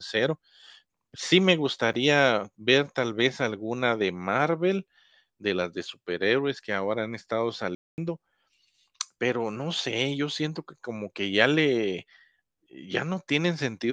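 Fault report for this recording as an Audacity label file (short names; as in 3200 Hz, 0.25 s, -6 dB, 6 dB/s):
1.930000	1.940000	gap 7.3 ms
7.750000	7.980000	gap 0.229 s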